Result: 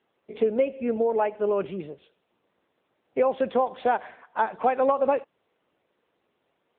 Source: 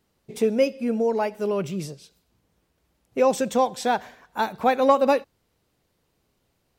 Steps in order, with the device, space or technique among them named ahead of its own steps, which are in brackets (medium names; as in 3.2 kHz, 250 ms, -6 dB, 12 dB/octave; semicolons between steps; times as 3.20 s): voicemail (band-pass 330–2800 Hz; compression 10:1, threshold -21 dBFS, peak gain reduction 9 dB; trim +3.5 dB; AMR-NB 7.95 kbps 8 kHz)